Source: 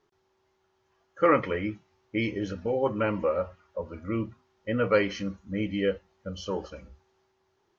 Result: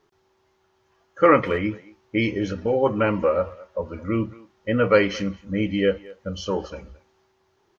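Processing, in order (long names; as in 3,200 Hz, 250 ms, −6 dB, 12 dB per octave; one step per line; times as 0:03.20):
far-end echo of a speakerphone 220 ms, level −20 dB
level +6 dB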